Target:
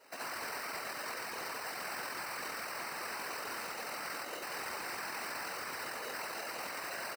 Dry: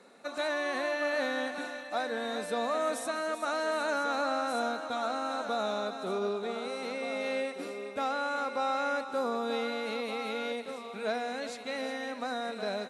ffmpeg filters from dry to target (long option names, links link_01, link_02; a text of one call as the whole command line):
ffmpeg -i in.wav -filter_complex "[0:a]highshelf=frequency=3300:gain=6.5,asplit=2[link_01][link_02];[link_02]aecho=0:1:190|313.5|393.8|446|479.9:0.631|0.398|0.251|0.158|0.1[link_03];[link_01][link_03]amix=inputs=2:normalize=0,asplit=4[link_04][link_05][link_06][link_07];[link_05]asetrate=29433,aresample=44100,atempo=1.49831,volume=-11dB[link_08];[link_06]asetrate=52444,aresample=44100,atempo=0.840896,volume=-5dB[link_09];[link_07]asetrate=55563,aresample=44100,atempo=0.793701,volume=-17dB[link_10];[link_04][link_08][link_09][link_10]amix=inputs=4:normalize=0,acrusher=samples=13:mix=1:aa=0.000001,aeval=exprs='(mod(21.1*val(0)+1,2)-1)/21.1':channel_layout=same,afftfilt=real='hypot(re,im)*cos(2*PI*random(0))':imag='hypot(re,im)*sin(2*PI*random(1))':win_size=512:overlap=0.75,atempo=1.8,highpass=frequency=1000:poles=1,alimiter=level_in=12.5dB:limit=-24dB:level=0:latency=1:release=74,volume=-12.5dB,volume=5.5dB" out.wav